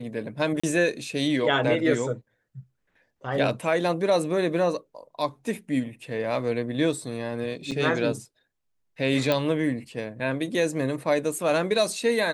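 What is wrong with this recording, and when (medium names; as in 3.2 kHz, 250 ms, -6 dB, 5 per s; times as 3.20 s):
0.60–0.64 s: dropout 35 ms
7.71–7.72 s: dropout 6 ms
9.32 s: pop -11 dBFS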